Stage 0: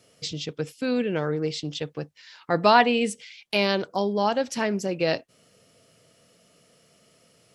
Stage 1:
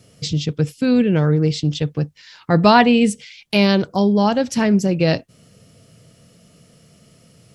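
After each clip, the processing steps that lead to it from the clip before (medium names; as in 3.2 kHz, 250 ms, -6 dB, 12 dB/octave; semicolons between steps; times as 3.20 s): tone controls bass +14 dB, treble +2 dB; trim +4 dB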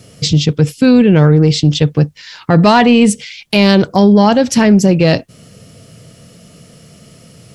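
saturation -5 dBFS, distortion -22 dB; loudness maximiser +11 dB; trim -1 dB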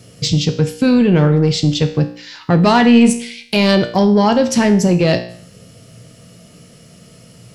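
feedback comb 59 Hz, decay 0.57 s, harmonics all, mix 70%; in parallel at -9 dB: saturation -15 dBFS, distortion -13 dB; on the sum: trim +2 dB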